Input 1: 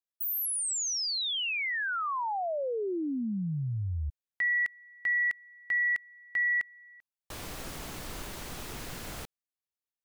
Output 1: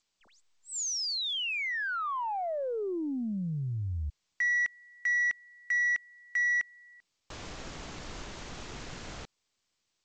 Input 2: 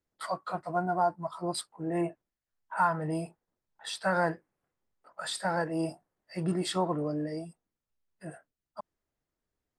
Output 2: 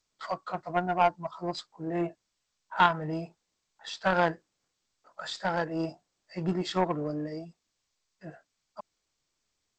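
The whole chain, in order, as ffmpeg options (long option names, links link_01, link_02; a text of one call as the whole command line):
ffmpeg -i in.wav -af "aeval=exprs='0.188*(cos(1*acos(clip(val(0)/0.188,-1,1)))-cos(1*PI/2))+0.00133*(cos(2*acos(clip(val(0)/0.188,-1,1)))-cos(2*PI/2))+0.0422*(cos(3*acos(clip(val(0)/0.188,-1,1)))-cos(3*PI/2))+0.00133*(cos(4*acos(clip(val(0)/0.188,-1,1)))-cos(4*PI/2))':channel_layout=same,volume=8dB" -ar 16000 -c:a g722 out.g722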